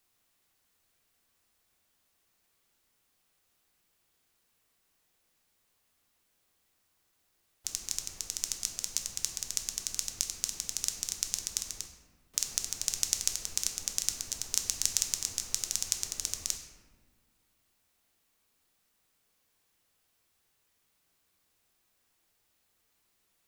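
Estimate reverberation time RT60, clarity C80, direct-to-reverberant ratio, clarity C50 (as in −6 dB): 1.5 s, 8.0 dB, 3.0 dB, 6.0 dB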